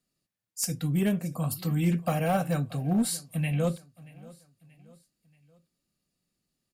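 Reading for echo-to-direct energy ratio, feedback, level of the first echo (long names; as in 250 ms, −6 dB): −21.0 dB, 46%, −22.0 dB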